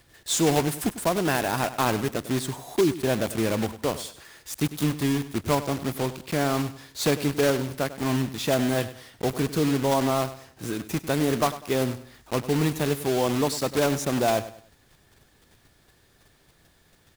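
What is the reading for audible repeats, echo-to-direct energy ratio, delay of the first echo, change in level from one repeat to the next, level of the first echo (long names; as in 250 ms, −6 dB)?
3, −14.0 dB, 99 ms, −9.5 dB, −14.5 dB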